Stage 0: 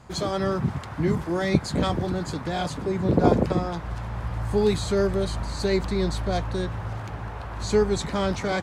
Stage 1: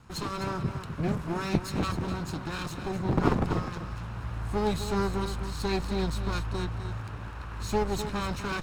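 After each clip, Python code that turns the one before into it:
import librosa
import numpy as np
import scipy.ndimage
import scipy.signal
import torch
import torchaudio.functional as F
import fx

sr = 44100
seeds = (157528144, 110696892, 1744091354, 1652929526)

y = fx.lower_of_two(x, sr, delay_ms=0.74)
y = y + 10.0 ** (-9.5 / 20.0) * np.pad(y, (int(253 * sr / 1000.0), 0))[:len(y)]
y = y * librosa.db_to_amplitude(-4.5)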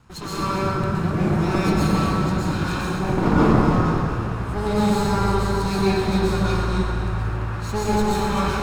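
y = fx.rev_plate(x, sr, seeds[0], rt60_s=2.6, hf_ratio=0.45, predelay_ms=105, drr_db=-9.0)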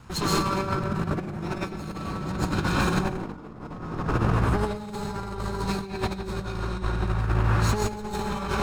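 y = fx.over_compress(x, sr, threshold_db=-26.0, ratio=-0.5)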